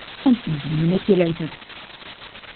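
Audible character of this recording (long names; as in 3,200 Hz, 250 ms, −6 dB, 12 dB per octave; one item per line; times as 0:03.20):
a buzz of ramps at a fixed pitch in blocks of 8 samples
phaser sweep stages 12, 1.2 Hz, lowest notch 410–2,000 Hz
a quantiser's noise floor 6 bits, dither triangular
Opus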